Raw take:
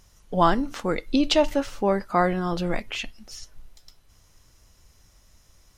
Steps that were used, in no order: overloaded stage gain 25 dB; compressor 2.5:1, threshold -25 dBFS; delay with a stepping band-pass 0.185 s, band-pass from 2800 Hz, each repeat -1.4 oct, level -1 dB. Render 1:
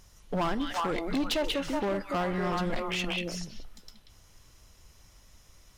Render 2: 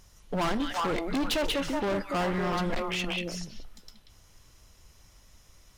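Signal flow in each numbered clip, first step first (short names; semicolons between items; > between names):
delay with a stepping band-pass > compressor > overloaded stage; delay with a stepping band-pass > overloaded stage > compressor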